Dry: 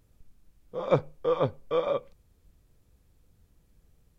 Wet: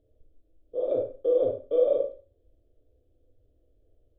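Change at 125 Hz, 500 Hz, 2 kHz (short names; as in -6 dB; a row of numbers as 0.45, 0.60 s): under -10 dB, +3.5 dB, under -20 dB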